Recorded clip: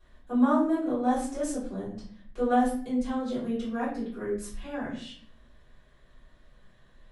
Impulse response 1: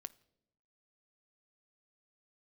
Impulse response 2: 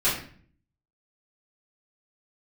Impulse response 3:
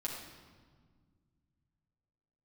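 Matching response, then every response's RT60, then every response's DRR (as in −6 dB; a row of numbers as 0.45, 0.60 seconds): 2; non-exponential decay, 0.50 s, 1.6 s; 13.5, −11.5, −4.5 decibels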